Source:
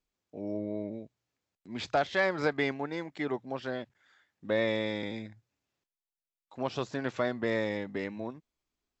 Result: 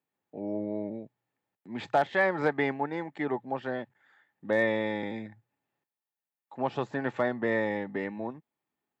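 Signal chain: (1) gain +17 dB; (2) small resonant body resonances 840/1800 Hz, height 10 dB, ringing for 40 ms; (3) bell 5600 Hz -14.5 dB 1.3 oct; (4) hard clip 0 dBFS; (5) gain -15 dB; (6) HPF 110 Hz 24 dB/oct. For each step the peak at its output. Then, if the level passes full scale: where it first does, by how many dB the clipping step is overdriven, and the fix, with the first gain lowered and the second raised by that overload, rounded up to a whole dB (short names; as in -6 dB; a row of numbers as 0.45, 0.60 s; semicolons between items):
+1.5, +4.5, +3.5, 0.0, -15.0, -12.5 dBFS; step 1, 3.5 dB; step 1 +13 dB, step 5 -11 dB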